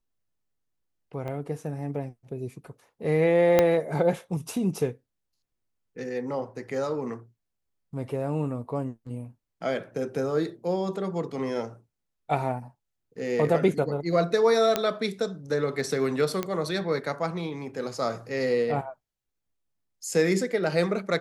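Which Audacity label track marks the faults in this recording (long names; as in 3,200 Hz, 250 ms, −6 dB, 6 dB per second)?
1.280000	1.280000	drop-out 2.5 ms
3.590000	3.590000	click −6 dBFS
14.760000	14.760000	click −8 dBFS
16.430000	16.430000	click −14 dBFS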